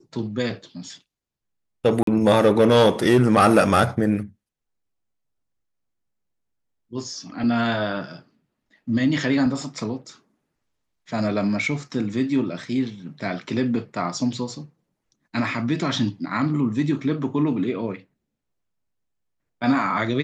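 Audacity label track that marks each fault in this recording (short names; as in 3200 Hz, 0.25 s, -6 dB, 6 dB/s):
2.030000	2.070000	gap 43 ms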